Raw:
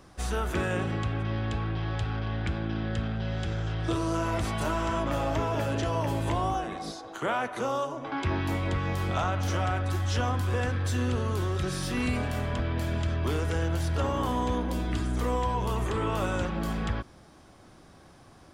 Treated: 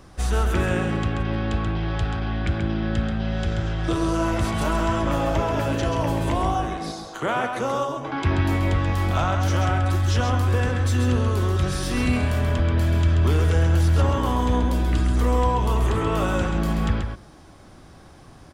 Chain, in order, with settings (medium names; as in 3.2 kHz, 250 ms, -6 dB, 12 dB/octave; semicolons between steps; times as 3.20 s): bass shelf 100 Hz +6.5 dB; on a send: delay 133 ms -6 dB; on the sum: trim +4 dB